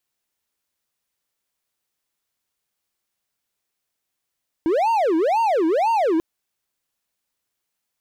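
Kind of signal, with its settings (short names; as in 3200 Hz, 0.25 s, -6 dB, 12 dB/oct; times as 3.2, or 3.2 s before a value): siren wail 316–923 Hz 2/s triangle -14 dBFS 1.54 s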